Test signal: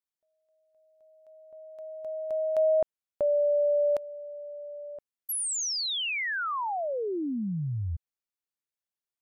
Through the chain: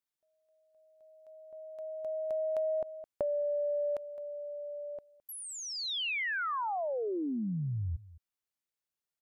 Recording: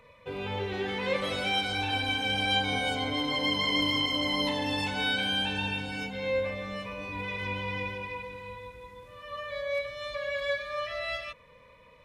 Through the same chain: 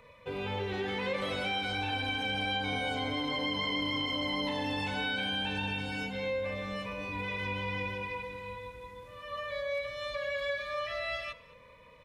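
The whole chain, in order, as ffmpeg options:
ffmpeg -i in.wav -filter_complex "[0:a]acrossover=split=3600[link_01][link_02];[link_02]acompressor=threshold=-45dB:ratio=4:attack=1:release=60[link_03];[link_01][link_03]amix=inputs=2:normalize=0,asplit=2[link_04][link_05];[link_05]aecho=0:1:213:0.0841[link_06];[link_04][link_06]amix=inputs=2:normalize=0,acompressor=threshold=-34dB:ratio=6:attack=76:release=40:knee=6:detection=rms" out.wav

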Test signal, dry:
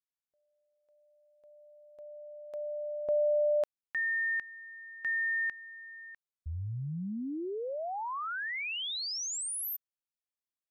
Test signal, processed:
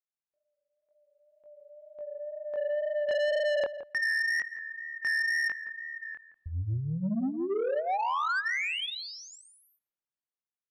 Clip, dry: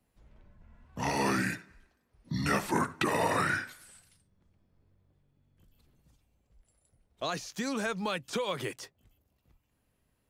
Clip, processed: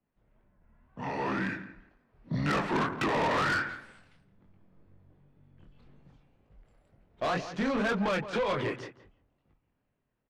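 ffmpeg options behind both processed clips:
ffmpeg -i in.wav -filter_complex "[0:a]lowpass=2300,equalizer=frequency=64:width_type=o:width=1.1:gain=-9,dynaudnorm=framelen=370:gausssize=9:maxgain=15.5dB,flanger=delay=20:depth=7.3:speed=2,asoftclip=type=tanh:threshold=-22.5dB,asplit=2[link_01][link_02];[link_02]adelay=169,lowpass=frequency=1500:poles=1,volume=-11.5dB,asplit=2[link_03][link_04];[link_04]adelay=169,lowpass=frequency=1500:poles=1,volume=0.16[link_05];[link_01][link_03][link_05]amix=inputs=3:normalize=0,volume=-2.5dB" out.wav

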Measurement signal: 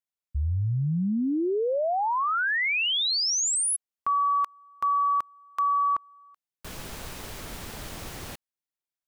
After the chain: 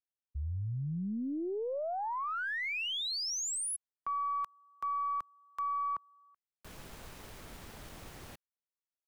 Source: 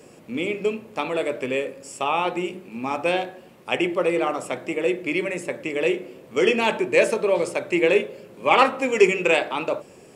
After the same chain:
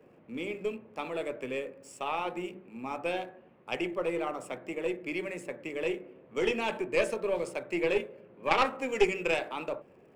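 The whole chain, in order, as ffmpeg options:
ffmpeg -i in.wav -filter_complex "[0:a]aeval=exprs='0.75*(cos(1*acos(clip(val(0)/0.75,-1,1)))-cos(1*PI/2))+0.335*(cos(2*acos(clip(val(0)/0.75,-1,1)))-cos(2*PI/2))+0.119*(cos(3*acos(clip(val(0)/0.75,-1,1)))-cos(3*PI/2))+0.0531*(cos(4*acos(clip(val(0)/0.75,-1,1)))-cos(4*PI/2))+0.0237*(cos(5*acos(clip(val(0)/0.75,-1,1)))-cos(5*PI/2))':channel_layout=same,acrossover=split=150|2700[link_01][link_02][link_03];[link_03]aeval=exprs='sgn(val(0))*max(abs(val(0))-0.00141,0)':channel_layout=same[link_04];[link_01][link_02][link_04]amix=inputs=3:normalize=0,volume=-6.5dB" out.wav

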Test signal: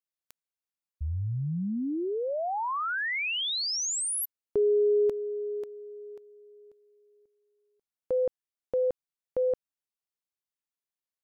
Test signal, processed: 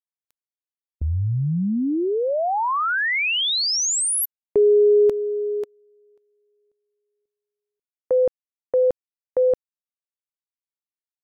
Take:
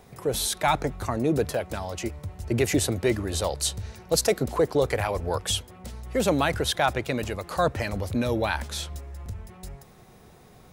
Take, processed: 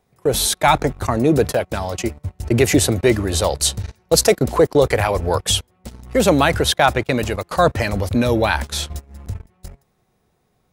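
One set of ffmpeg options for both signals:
ffmpeg -i in.wav -af "agate=range=-22dB:threshold=-39dB:ratio=16:release=31:detection=peak,volume=8.5dB" out.wav

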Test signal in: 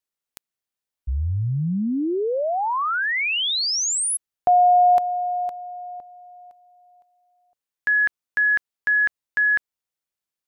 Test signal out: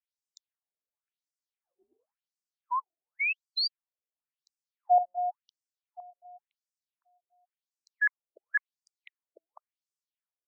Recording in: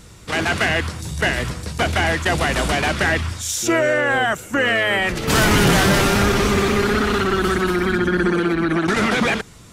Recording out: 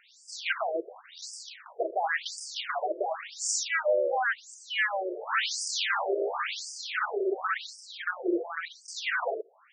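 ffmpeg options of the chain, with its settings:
ffmpeg -i in.wav -af "afftfilt=real='re*between(b*sr/1024,460*pow(6700/460,0.5+0.5*sin(2*PI*0.93*pts/sr))/1.41,460*pow(6700/460,0.5+0.5*sin(2*PI*0.93*pts/sr))*1.41)':imag='im*between(b*sr/1024,460*pow(6700/460,0.5+0.5*sin(2*PI*0.93*pts/sr))/1.41,460*pow(6700/460,0.5+0.5*sin(2*PI*0.93*pts/sr))*1.41)':win_size=1024:overlap=0.75,volume=-4dB" out.wav

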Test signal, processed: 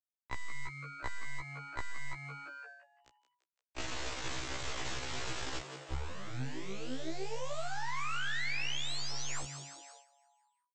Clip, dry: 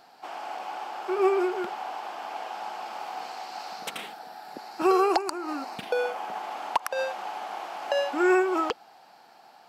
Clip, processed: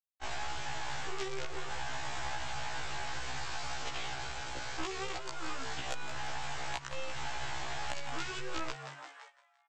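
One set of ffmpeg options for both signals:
ffmpeg -i in.wav -filter_complex "[0:a]aresample=16000,acrusher=bits=4:dc=4:mix=0:aa=0.000001,aresample=44100,acompressor=threshold=-34dB:ratio=8,asplit=8[link_01][link_02][link_03][link_04][link_05][link_06][link_07][link_08];[link_02]adelay=171,afreqshift=140,volume=-12dB[link_09];[link_03]adelay=342,afreqshift=280,volume=-16.2dB[link_10];[link_04]adelay=513,afreqshift=420,volume=-20.3dB[link_11];[link_05]adelay=684,afreqshift=560,volume=-24.5dB[link_12];[link_06]adelay=855,afreqshift=700,volume=-28.6dB[link_13];[link_07]adelay=1026,afreqshift=840,volume=-32.8dB[link_14];[link_08]adelay=1197,afreqshift=980,volume=-36.9dB[link_15];[link_01][link_09][link_10][link_11][link_12][link_13][link_14][link_15]amix=inputs=8:normalize=0,acrossover=split=200|1900[link_16][link_17][link_18];[link_16]acompressor=threshold=-46dB:ratio=4[link_19];[link_17]acompressor=threshold=-49dB:ratio=4[link_20];[link_18]acompressor=threshold=-43dB:ratio=4[link_21];[link_19][link_20][link_21]amix=inputs=3:normalize=0,equalizer=frequency=6300:width_type=o:width=1.7:gain=-5.5,agate=range=-12dB:threshold=-59dB:ratio=16:detection=peak,equalizer=frequency=190:width_type=o:width=0.52:gain=-11.5,afftfilt=real='re*1.73*eq(mod(b,3),0)':imag='im*1.73*eq(mod(b,3),0)':win_size=2048:overlap=0.75,volume=10dB" out.wav

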